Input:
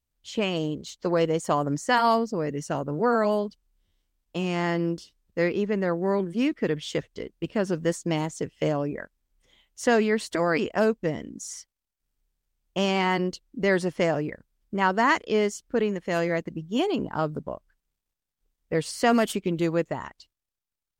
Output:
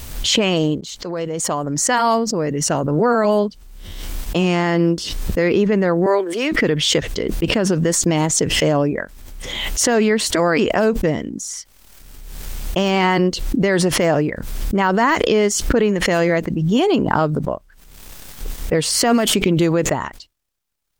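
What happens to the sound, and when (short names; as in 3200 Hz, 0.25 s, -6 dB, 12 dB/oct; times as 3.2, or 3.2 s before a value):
0.81–3.32 fade in, from -21.5 dB
6.06–6.52 HPF 380 Hz 24 dB/oct
whole clip: de-esser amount 75%; maximiser +17 dB; backwards sustainer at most 33 dB/s; gain -6.5 dB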